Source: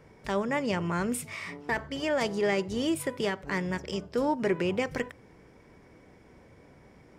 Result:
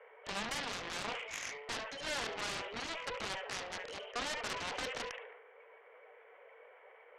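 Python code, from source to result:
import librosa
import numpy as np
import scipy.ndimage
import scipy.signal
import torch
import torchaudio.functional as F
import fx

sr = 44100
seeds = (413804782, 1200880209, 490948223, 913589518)

y = fx.spec_quant(x, sr, step_db=15)
y = fx.rider(y, sr, range_db=10, speed_s=2.0)
y = 10.0 ** (-29.0 / 20.0) * (np.abs((y / 10.0 ** (-29.0 / 20.0) + 3.0) % 4.0 - 2.0) - 1.0)
y = scipy.signal.sosfilt(scipy.signal.cheby1(5, 1.0, [450.0, 3100.0], 'bandpass', fs=sr, output='sos'), y)
y = fx.echo_wet_highpass(y, sr, ms=72, feedback_pct=33, hz=2300.0, wet_db=-6.5)
y = fx.cheby_harmonics(y, sr, harmonics=(7, 8), levels_db=(-8, -31), full_scale_db=-25.0)
y = fx.sustainer(y, sr, db_per_s=47.0)
y = y * 10.0 ** (-3.5 / 20.0)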